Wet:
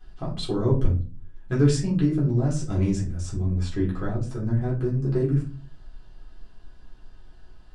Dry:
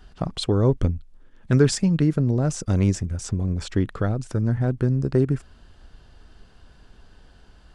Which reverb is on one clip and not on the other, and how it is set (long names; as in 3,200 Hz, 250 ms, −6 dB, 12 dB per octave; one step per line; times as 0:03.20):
rectangular room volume 180 cubic metres, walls furnished, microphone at 3.8 metres
level −12.5 dB